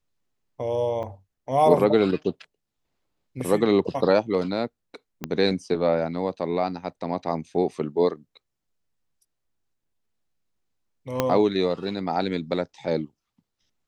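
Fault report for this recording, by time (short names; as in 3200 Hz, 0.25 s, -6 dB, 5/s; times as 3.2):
1.03–1.04 gap 5.4 ms
5.24 pop -14 dBFS
11.2 pop -7 dBFS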